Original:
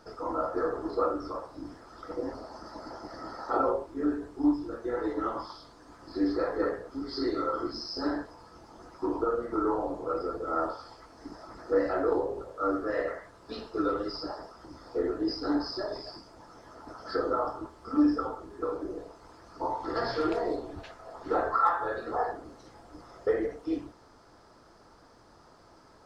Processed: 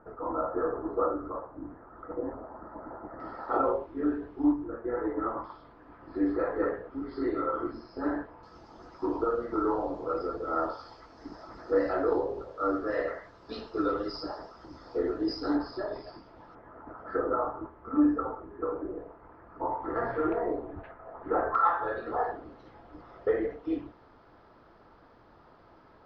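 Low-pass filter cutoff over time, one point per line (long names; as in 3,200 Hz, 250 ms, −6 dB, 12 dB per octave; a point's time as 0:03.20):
low-pass filter 24 dB per octave
1,600 Hz
from 0:03.20 3,200 Hz
from 0:04.52 1,900 Hz
from 0:05.44 2,700 Hz
from 0:08.43 5,400 Hz
from 0:15.57 3,600 Hz
from 0:16.55 2,000 Hz
from 0:21.55 3,500 Hz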